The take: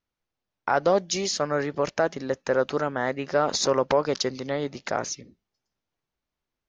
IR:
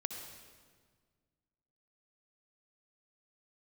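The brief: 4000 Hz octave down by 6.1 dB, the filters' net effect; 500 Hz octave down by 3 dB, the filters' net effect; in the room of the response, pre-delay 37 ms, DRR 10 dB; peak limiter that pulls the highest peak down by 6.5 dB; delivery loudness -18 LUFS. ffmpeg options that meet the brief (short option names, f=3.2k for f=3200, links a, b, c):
-filter_complex "[0:a]equalizer=f=500:t=o:g=-3.5,equalizer=f=4k:t=o:g=-8,alimiter=limit=-17dB:level=0:latency=1,asplit=2[a][b];[1:a]atrim=start_sample=2205,adelay=37[c];[b][c]afir=irnorm=-1:irlink=0,volume=-10dB[d];[a][d]amix=inputs=2:normalize=0,volume=12.5dB"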